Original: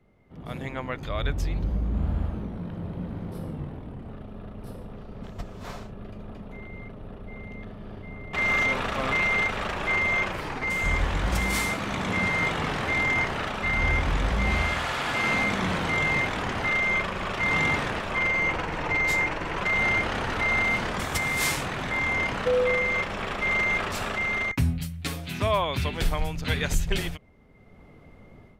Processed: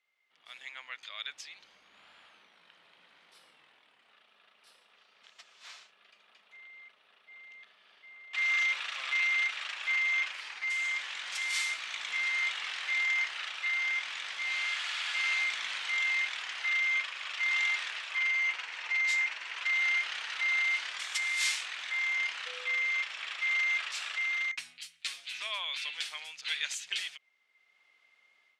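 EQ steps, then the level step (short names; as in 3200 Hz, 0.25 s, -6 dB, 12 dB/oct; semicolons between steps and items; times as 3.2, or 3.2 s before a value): Butterworth band-pass 5400 Hz, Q 0.65; air absorption 54 m; +1.5 dB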